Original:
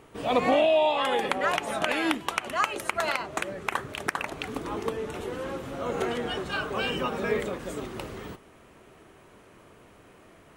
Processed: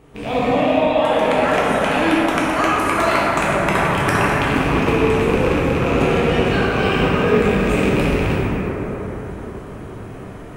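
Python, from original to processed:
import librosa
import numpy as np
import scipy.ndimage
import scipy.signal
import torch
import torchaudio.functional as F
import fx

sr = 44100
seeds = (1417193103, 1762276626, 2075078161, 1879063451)

y = fx.rattle_buzz(x, sr, strikes_db=-38.0, level_db=-20.0)
y = fx.low_shelf(y, sr, hz=300.0, db=10.0)
y = fx.rider(y, sr, range_db=5, speed_s=0.5)
y = fx.rev_plate(y, sr, seeds[0], rt60_s=4.7, hf_ratio=0.3, predelay_ms=0, drr_db=-8.0)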